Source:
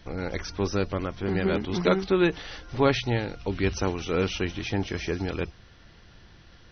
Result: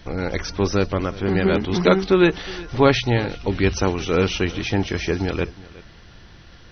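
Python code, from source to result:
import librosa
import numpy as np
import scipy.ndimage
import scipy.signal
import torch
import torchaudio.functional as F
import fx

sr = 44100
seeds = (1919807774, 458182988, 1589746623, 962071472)

y = x + 10.0 ** (-20.0 / 20.0) * np.pad(x, (int(364 * sr / 1000.0), 0))[:len(x)]
y = F.gain(torch.from_numpy(y), 6.5).numpy()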